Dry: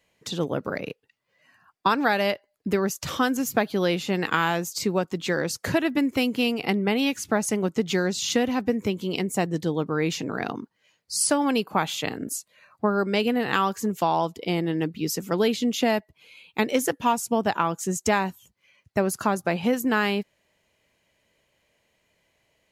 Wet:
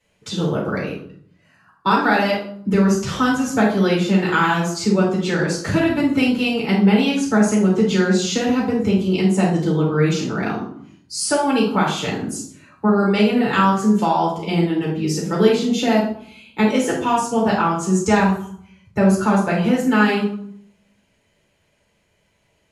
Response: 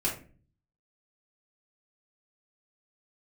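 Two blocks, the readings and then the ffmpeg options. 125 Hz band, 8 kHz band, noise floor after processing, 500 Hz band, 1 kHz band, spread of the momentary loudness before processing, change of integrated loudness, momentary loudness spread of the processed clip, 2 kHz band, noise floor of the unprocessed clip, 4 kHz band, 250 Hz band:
+10.5 dB, +1.5 dB, −64 dBFS, +5.5 dB, +5.5 dB, 7 LU, +6.5 dB, 9 LU, +5.0 dB, −72 dBFS, +3.5 dB, +8.5 dB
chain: -filter_complex "[0:a]acrossover=split=9400[link_01][link_02];[link_02]acompressor=threshold=-53dB:ratio=4:attack=1:release=60[link_03];[link_01][link_03]amix=inputs=2:normalize=0[link_04];[1:a]atrim=start_sample=2205,asetrate=24696,aresample=44100[link_05];[link_04][link_05]afir=irnorm=-1:irlink=0,volume=-6dB"

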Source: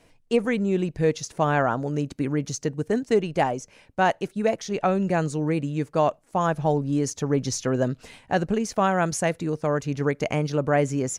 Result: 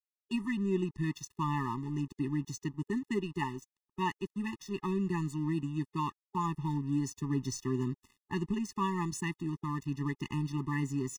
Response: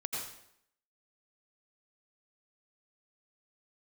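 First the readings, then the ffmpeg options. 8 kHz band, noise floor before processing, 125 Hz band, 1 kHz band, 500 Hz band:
−11.5 dB, −59 dBFS, −7.0 dB, −11.5 dB, −17.0 dB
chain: -af "aeval=exprs='sgn(val(0))*max(abs(val(0))-0.00891,0)':channel_layout=same,afftfilt=real='re*eq(mod(floor(b*sr/1024/420),2),0)':imag='im*eq(mod(floor(b*sr/1024/420),2),0)':win_size=1024:overlap=0.75,volume=-6dB"

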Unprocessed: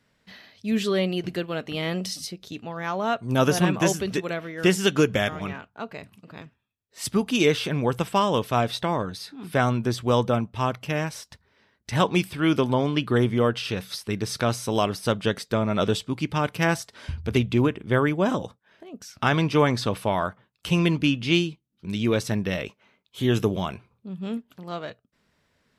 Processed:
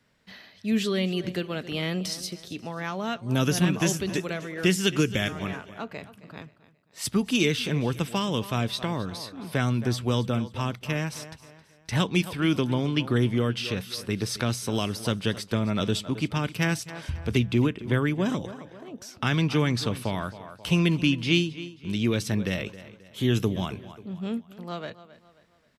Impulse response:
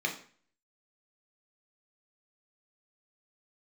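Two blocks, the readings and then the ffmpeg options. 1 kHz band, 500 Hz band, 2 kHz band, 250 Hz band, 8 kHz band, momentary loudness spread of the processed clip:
−7.5 dB, −5.5 dB, −2.0 dB, −1.0 dB, 0.0 dB, 14 LU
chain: -filter_complex "[0:a]aecho=1:1:267|534|801:0.133|0.052|0.0203,acrossover=split=340|1700[link_01][link_02][link_03];[link_02]acompressor=threshold=-33dB:ratio=6[link_04];[link_01][link_04][link_03]amix=inputs=3:normalize=0"

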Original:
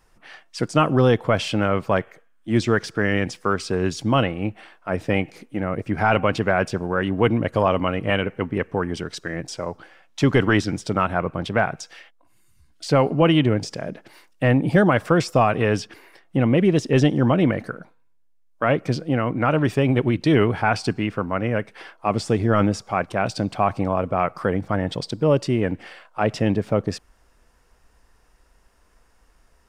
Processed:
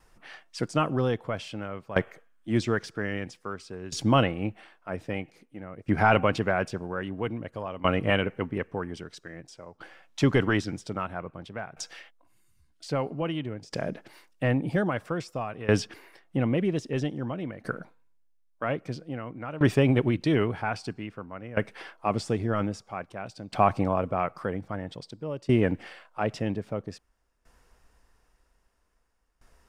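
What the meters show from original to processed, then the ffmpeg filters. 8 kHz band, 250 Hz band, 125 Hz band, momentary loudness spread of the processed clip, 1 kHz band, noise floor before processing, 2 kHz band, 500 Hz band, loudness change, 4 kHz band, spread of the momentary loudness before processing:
−7.0 dB, −7.5 dB, −7.5 dB, 16 LU, −7.0 dB, −58 dBFS, −7.0 dB, −7.5 dB, −7.0 dB, −7.0 dB, 12 LU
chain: -af "aeval=exprs='val(0)*pow(10,-18*if(lt(mod(0.51*n/s,1),2*abs(0.51)/1000),1-mod(0.51*n/s,1)/(2*abs(0.51)/1000),(mod(0.51*n/s,1)-2*abs(0.51)/1000)/(1-2*abs(0.51)/1000))/20)':channel_layout=same"

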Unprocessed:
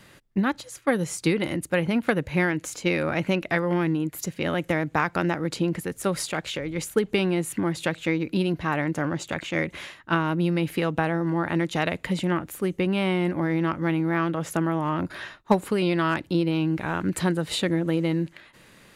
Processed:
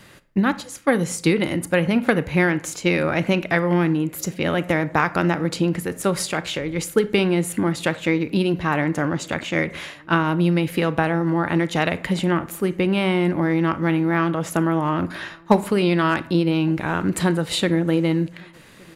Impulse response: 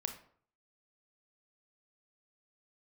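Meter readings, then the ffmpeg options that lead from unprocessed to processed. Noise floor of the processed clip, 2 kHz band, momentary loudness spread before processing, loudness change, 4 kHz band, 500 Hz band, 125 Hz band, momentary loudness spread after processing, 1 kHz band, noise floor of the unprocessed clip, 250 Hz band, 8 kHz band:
−45 dBFS, +4.5 dB, 5 LU, +4.5 dB, +4.5 dB, +4.5 dB, +4.5 dB, 5 LU, +4.5 dB, −54 dBFS, +4.5 dB, +4.5 dB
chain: -filter_complex "[0:a]asplit=2[link_01][link_02];[link_02]adelay=1166,volume=-28dB,highshelf=frequency=4000:gain=-26.2[link_03];[link_01][link_03]amix=inputs=2:normalize=0,asplit=2[link_04][link_05];[1:a]atrim=start_sample=2205[link_06];[link_05][link_06]afir=irnorm=-1:irlink=0,volume=-3dB[link_07];[link_04][link_07]amix=inputs=2:normalize=0"

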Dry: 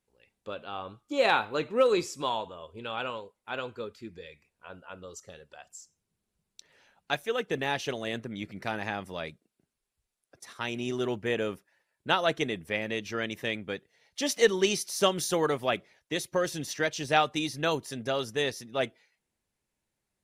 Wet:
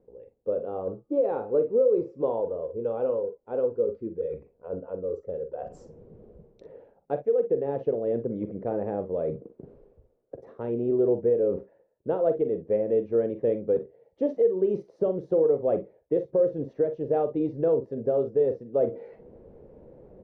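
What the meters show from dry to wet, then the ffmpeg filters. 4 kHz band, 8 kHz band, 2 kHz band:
below −30 dB, below −35 dB, below −20 dB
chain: -af "lowpass=frequency=490:width_type=q:width=4.9,alimiter=limit=-17dB:level=0:latency=1:release=335,areverse,acompressor=mode=upward:threshold=-27dB:ratio=2.5,areverse,aecho=1:1:43|58:0.282|0.178,volume=1.5dB"

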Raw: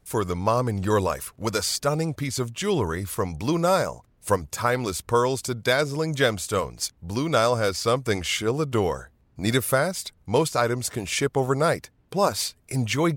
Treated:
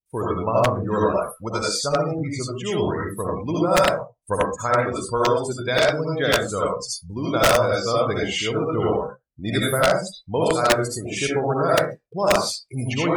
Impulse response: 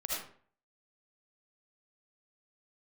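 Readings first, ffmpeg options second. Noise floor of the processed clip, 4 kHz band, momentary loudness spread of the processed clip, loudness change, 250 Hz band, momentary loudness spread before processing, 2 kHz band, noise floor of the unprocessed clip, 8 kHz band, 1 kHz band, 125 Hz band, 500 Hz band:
−60 dBFS, +2.5 dB, 9 LU, +2.5 dB, +1.5 dB, 7 LU, +3.0 dB, −62 dBFS, 0.0 dB, +3.0 dB, 0.0 dB, +3.5 dB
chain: -filter_complex "[1:a]atrim=start_sample=2205,afade=type=out:start_time=0.27:duration=0.01,atrim=end_sample=12348[link_01];[0:a][link_01]afir=irnorm=-1:irlink=0,aeval=exprs='(mod(2.51*val(0)+1,2)-1)/2.51':channel_layout=same,afftdn=noise_reduction=33:noise_floor=-30"

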